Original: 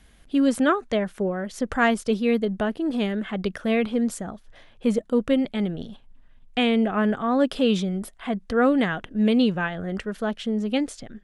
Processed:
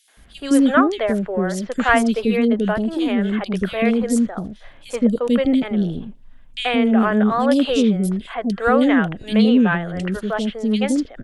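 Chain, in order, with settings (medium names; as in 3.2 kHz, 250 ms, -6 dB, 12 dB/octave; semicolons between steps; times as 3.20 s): three bands offset in time highs, mids, lows 80/170 ms, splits 450/3000 Hz; trim +6.5 dB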